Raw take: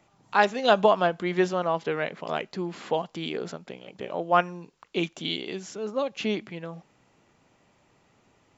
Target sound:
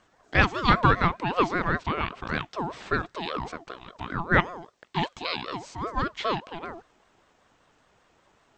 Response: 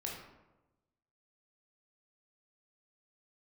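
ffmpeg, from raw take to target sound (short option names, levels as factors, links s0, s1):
-filter_complex "[0:a]acrossover=split=5600[s0][s1];[s1]acompressor=threshold=0.00126:ratio=4:attack=1:release=60[s2];[s0][s2]amix=inputs=2:normalize=0,aeval=exprs='val(0)*sin(2*PI*700*n/s+700*0.3/5.1*sin(2*PI*5.1*n/s))':c=same,volume=1.41"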